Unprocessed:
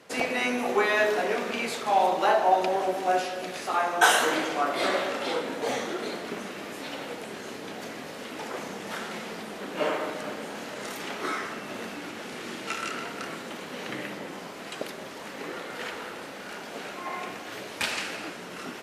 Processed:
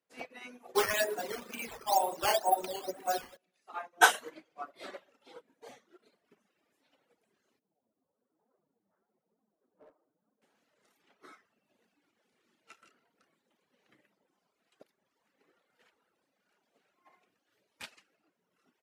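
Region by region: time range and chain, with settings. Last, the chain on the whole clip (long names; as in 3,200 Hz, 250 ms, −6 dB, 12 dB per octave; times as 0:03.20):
0:00.75–0:03.37: sample-and-hold swept by an LFO 8× 2.1 Hz + envelope flattener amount 50%
0:07.59–0:10.42: Bessel low-pass filter 850 Hz, order 4 + flanger 1.1 Hz, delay 3.6 ms, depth 8 ms, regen +30% + gain into a clipping stage and back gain 27.5 dB
whole clip: reverb reduction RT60 1.7 s; high-shelf EQ 11,000 Hz +4 dB; expander for the loud parts 2.5 to 1, over −39 dBFS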